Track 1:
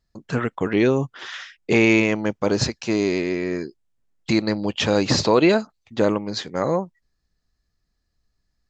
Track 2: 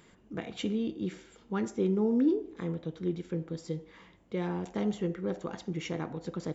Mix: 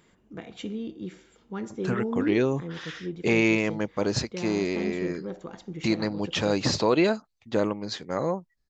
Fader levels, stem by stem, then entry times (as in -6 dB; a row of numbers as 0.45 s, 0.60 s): -5.5 dB, -2.5 dB; 1.55 s, 0.00 s